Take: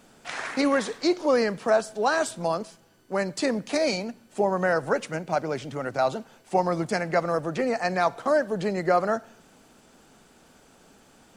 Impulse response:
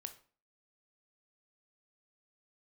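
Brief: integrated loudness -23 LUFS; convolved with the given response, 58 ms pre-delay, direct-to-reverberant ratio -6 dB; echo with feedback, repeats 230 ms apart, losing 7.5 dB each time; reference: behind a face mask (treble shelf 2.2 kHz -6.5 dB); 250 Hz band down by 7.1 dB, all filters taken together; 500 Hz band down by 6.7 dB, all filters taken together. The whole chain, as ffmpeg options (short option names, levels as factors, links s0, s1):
-filter_complex "[0:a]equalizer=f=250:t=o:g=-7.5,equalizer=f=500:t=o:g=-6.5,aecho=1:1:230|460|690|920|1150:0.422|0.177|0.0744|0.0312|0.0131,asplit=2[s0][s1];[1:a]atrim=start_sample=2205,adelay=58[s2];[s1][s2]afir=irnorm=-1:irlink=0,volume=3.35[s3];[s0][s3]amix=inputs=2:normalize=0,highshelf=f=2200:g=-6.5,volume=1.12"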